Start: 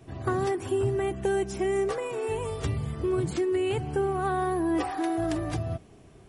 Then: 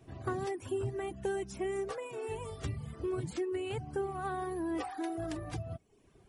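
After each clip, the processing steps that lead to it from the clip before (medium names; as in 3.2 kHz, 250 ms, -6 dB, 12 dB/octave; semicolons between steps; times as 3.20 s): reverb removal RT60 0.77 s; trim -7 dB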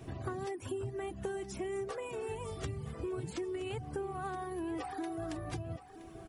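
compression 3:1, threshold -50 dBFS, peak gain reduction 14.5 dB; feedback delay 971 ms, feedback 34%, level -14 dB; trim +9.5 dB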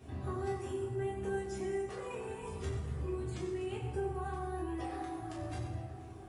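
reverberation RT60 1.5 s, pre-delay 6 ms, DRR -6 dB; trim -8 dB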